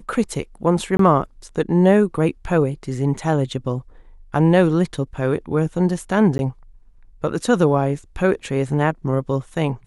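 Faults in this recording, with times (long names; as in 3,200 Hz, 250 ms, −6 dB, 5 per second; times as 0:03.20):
0:00.97–0:00.99: drop-out 23 ms
0:06.38–0:06.39: drop-out 11 ms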